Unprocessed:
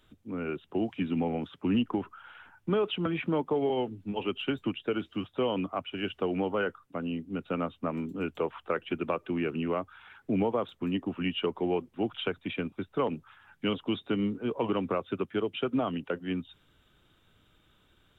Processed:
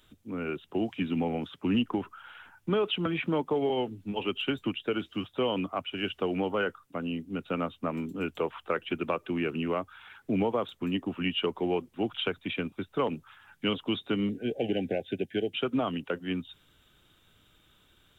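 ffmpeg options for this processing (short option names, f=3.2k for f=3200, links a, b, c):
-filter_complex "[0:a]asettb=1/sr,asplit=3[a][b][c];[a]atrim=end=14.294[d];[b]atrim=start=14.29:end=15.53,asetpts=PTS-STARTPTS,afade=t=in:d=0.004:c=qsin,afade=t=out:st=1.236:d=0.004:c=qsin,asuperstop=centerf=1100:order=20:qfactor=1.6[e];[c]atrim=start=15.526[f];[d][e]acrossfade=d=0.004:c1=hsin:c2=qsin[g];[g][f]acrossfade=d=0.004:c1=qsin:c2=hsin,highshelf=f=3.3k:g=8.5"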